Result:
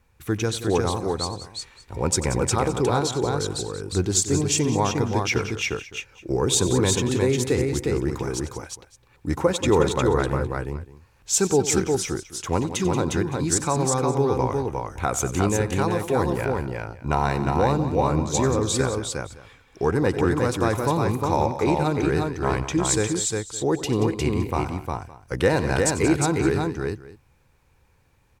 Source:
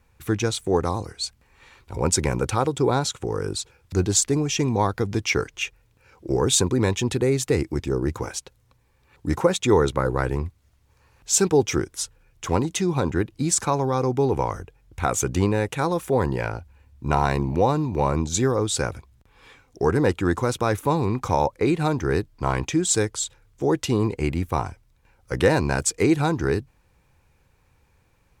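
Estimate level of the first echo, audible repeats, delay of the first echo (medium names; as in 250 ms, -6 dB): -15.0 dB, 4, 93 ms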